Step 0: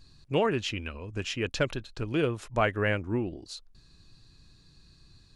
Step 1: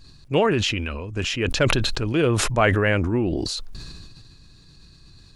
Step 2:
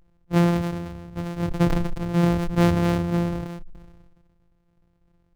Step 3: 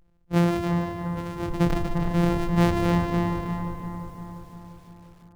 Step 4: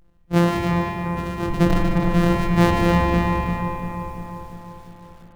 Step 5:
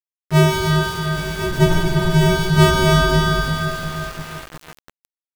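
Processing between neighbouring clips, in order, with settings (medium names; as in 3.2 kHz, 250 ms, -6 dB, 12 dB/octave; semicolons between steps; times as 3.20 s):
decay stretcher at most 24 dB/s; trim +6 dB
sorted samples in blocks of 256 samples; spectral contrast expander 1.5:1; trim -6.5 dB
bucket-brigade echo 347 ms, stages 4096, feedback 61%, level -5.5 dB; bit-crushed delay 148 ms, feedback 55%, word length 8-bit, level -9 dB; trim -2 dB
spring tank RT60 2.3 s, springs 44 ms, chirp 45 ms, DRR 1.5 dB; trim +4.5 dB
frequency axis rescaled in octaves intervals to 129%; small samples zeroed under -33.5 dBFS; trim +5 dB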